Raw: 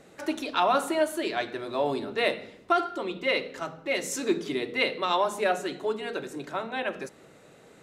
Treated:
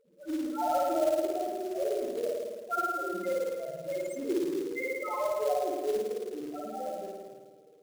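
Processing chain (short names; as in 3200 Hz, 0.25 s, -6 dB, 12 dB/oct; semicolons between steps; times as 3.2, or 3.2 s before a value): loudest bins only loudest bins 1; spring tank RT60 1.6 s, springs 54 ms, chirp 55 ms, DRR -4 dB; short-mantissa float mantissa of 2-bit; attack slew limiter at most 310 dB/s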